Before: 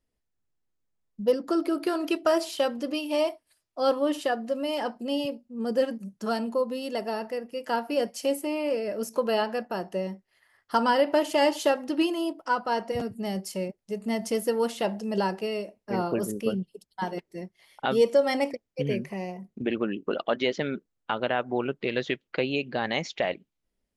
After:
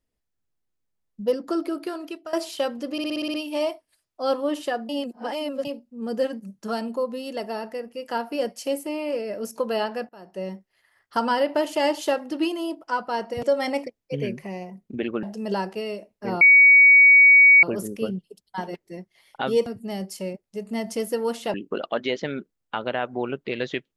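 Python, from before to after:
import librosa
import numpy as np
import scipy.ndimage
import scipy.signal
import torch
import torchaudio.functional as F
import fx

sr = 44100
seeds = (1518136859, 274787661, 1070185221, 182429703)

y = fx.edit(x, sr, fx.fade_out_to(start_s=1.57, length_s=0.76, floor_db=-16.5),
    fx.stutter(start_s=2.92, slice_s=0.06, count=8),
    fx.reverse_span(start_s=4.47, length_s=0.76),
    fx.fade_in_from(start_s=9.67, length_s=0.36, curve='qua', floor_db=-17.0),
    fx.swap(start_s=13.01, length_s=1.88, other_s=18.1, other_length_s=1.8),
    fx.insert_tone(at_s=16.07, length_s=1.22, hz=2250.0, db=-9.0), tone=tone)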